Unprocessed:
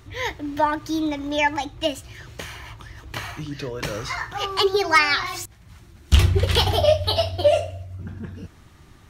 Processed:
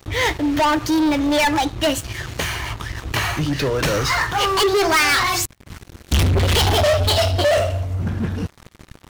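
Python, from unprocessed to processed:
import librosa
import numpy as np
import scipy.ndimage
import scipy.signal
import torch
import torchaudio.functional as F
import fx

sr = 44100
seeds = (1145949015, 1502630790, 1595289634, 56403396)

y = fx.leveller(x, sr, passes=5)
y = y * 10.0 ** (-6.0 / 20.0)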